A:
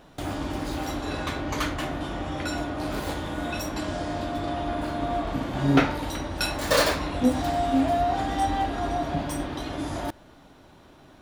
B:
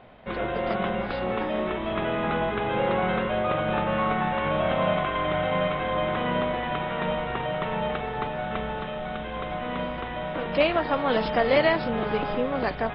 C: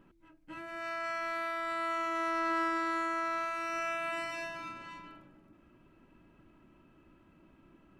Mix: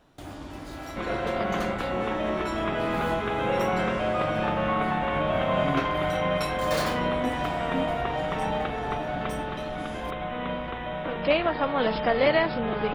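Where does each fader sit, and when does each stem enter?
-9.0 dB, -1.0 dB, -5.5 dB; 0.00 s, 0.70 s, 0.00 s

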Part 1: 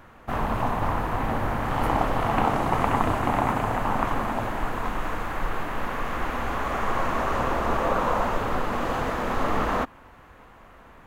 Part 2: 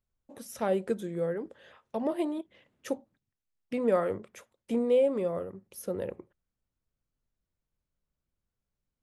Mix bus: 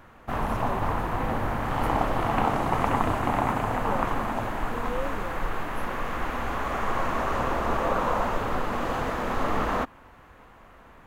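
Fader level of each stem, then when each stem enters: -1.5 dB, -10.0 dB; 0.00 s, 0.00 s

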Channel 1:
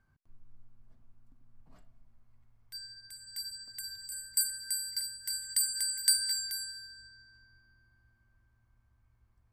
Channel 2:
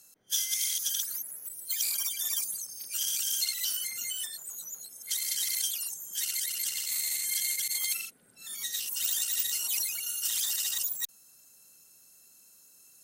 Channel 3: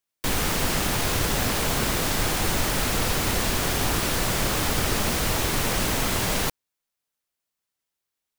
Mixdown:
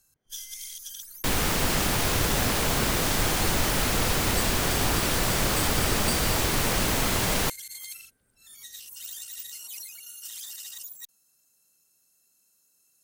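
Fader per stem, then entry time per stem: -7.5 dB, -9.5 dB, -0.5 dB; 0.00 s, 0.00 s, 1.00 s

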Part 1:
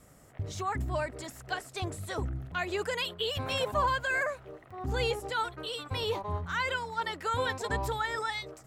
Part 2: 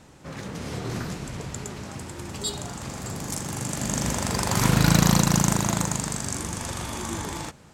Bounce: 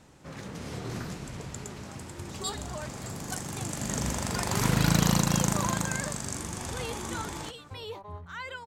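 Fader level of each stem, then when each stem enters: -8.0 dB, -5.0 dB; 1.80 s, 0.00 s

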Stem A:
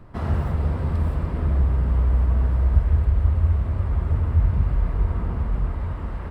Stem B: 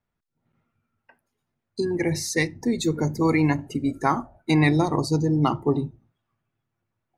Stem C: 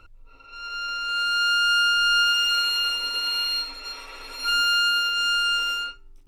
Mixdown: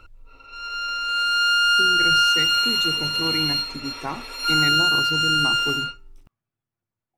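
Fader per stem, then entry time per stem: mute, -8.5 dB, +2.5 dB; mute, 0.00 s, 0.00 s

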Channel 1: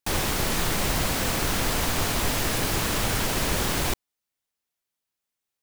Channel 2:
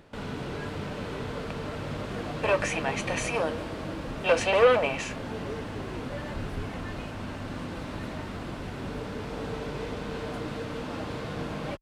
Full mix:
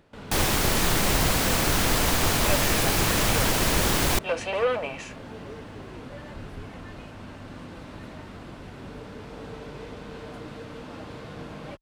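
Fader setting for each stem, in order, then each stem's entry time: +2.5 dB, -5.0 dB; 0.25 s, 0.00 s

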